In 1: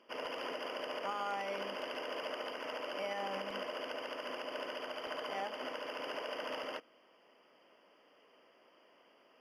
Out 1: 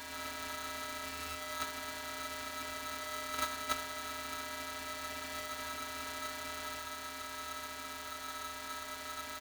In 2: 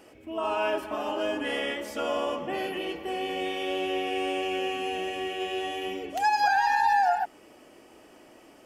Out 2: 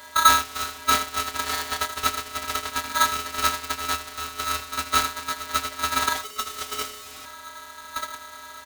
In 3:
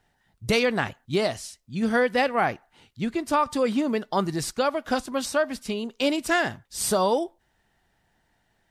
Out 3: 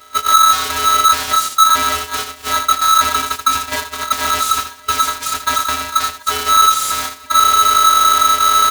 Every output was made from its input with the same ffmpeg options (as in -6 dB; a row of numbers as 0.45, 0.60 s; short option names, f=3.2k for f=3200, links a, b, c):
-filter_complex "[0:a]aeval=exprs='val(0)+0.5*0.0376*sgn(val(0))':c=same,equalizer=f=81:t=o:w=0.47:g=14,acrossover=split=140|1900[a][b][c];[a]dynaudnorm=f=110:g=3:m=11dB[d];[b]aeval=exprs='(mod(18.8*val(0)+1,2)-1)/18.8':c=same[e];[d][e][c]amix=inputs=3:normalize=0,acontrast=32,lowshelf=f=320:g=4.5,agate=range=-26dB:threshold=-18dB:ratio=16:detection=peak,asplit=2[f][g];[g]aecho=0:1:22|80:0.282|0.251[h];[f][h]amix=inputs=2:normalize=0,afftfilt=real='hypot(re,im)*cos(PI*b)':imag='0':win_size=512:overlap=0.75,alimiter=level_in=13dB:limit=-1dB:release=50:level=0:latency=1,aeval=exprs='val(0)*sgn(sin(2*PI*1300*n/s))':c=same,volume=-2dB"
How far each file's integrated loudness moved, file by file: +0.5, +3.5, +12.5 LU